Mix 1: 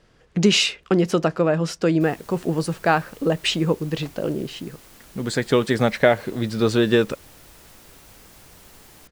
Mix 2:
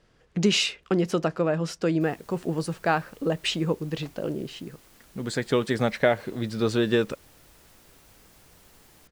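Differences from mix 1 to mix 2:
speech -5.0 dB; background -7.5 dB

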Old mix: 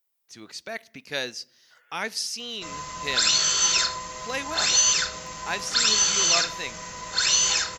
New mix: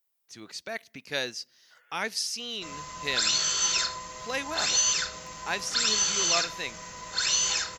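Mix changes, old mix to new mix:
speech: send -8.0 dB; background -4.5 dB

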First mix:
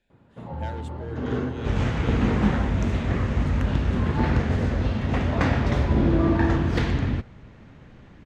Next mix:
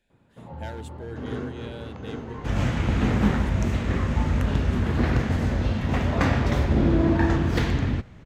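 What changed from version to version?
first sound -5.0 dB; second sound: entry +0.80 s; master: remove air absorption 50 m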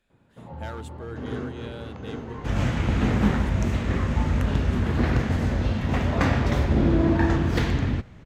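speech: remove Butterworth band-stop 1200 Hz, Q 2.7

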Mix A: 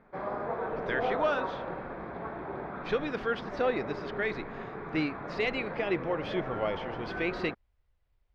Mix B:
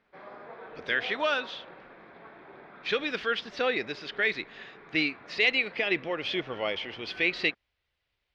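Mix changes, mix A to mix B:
background -11.5 dB; master: add weighting filter D

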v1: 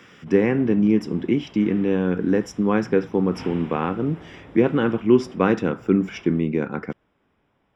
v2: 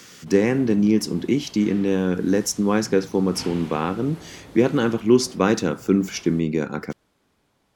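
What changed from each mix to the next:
master: remove polynomial smoothing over 25 samples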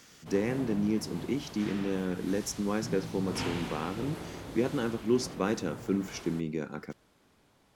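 speech -11.0 dB; reverb: on, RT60 0.50 s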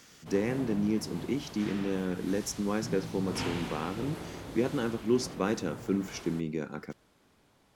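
none

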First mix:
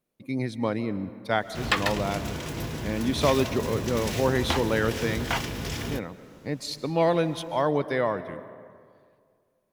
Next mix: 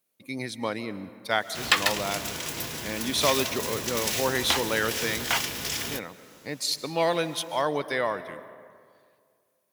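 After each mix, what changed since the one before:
master: add tilt +3 dB/oct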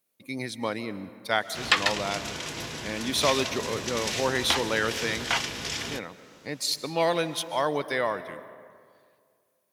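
background: add LPF 6500 Hz 12 dB/oct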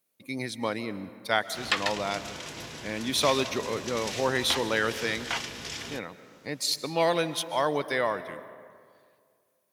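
background -5.0 dB

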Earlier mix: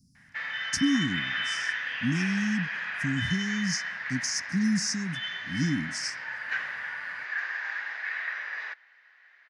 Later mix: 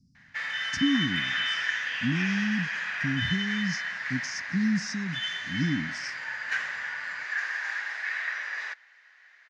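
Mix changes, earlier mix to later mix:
speech: add air absorption 140 m; background: remove air absorption 160 m

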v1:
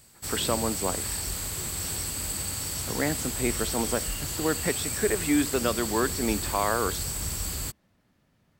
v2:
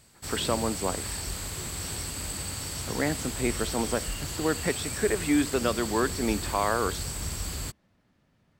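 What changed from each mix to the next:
master: add high shelf 10000 Hz -11 dB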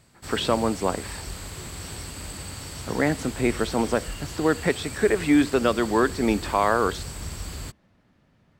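speech +5.5 dB; master: add high shelf 5200 Hz -6.5 dB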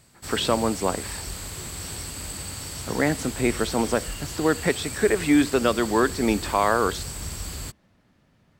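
master: add high shelf 5200 Hz +6.5 dB

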